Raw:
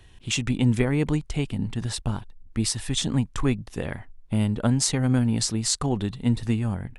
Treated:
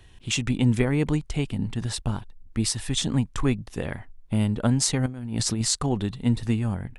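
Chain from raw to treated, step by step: 5.06–5.65 negative-ratio compressor -27 dBFS, ratio -0.5

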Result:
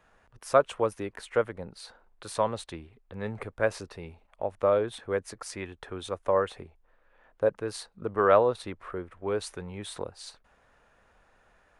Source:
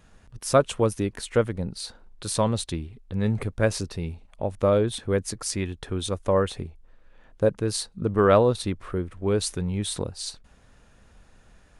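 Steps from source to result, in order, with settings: three-band isolator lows -14 dB, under 440 Hz, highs -12 dB, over 2400 Hz

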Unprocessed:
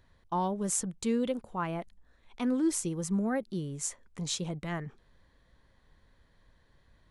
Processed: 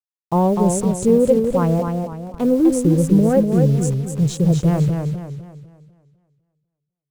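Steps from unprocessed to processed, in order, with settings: Wiener smoothing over 25 samples; graphic EQ 125/250/500/2000/4000 Hz +11/-7/+9/-3/-5 dB; requantised 8-bit, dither none; low shelf 470 Hz +11.5 dB; warbling echo 0.25 s, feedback 39%, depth 108 cents, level -5 dB; gain +5.5 dB

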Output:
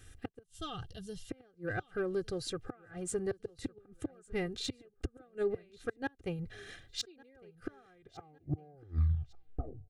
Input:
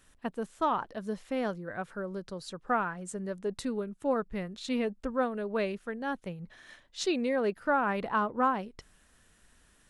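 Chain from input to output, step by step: tape stop at the end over 2.17 s; spectral gain 0.43–1.3, 210–2700 Hz -16 dB; Butterworth band-stop 970 Hz, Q 2.3; flipped gate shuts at -26 dBFS, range -35 dB; in parallel at -4 dB: soft clip -35.5 dBFS, distortion -11 dB; on the sum: bell 99 Hz +13.5 dB 1.4 oct; comb 2.5 ms, depth 69%; feedback echo 1.156 s, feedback 35%, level -23.5 dB; gain -2 dB

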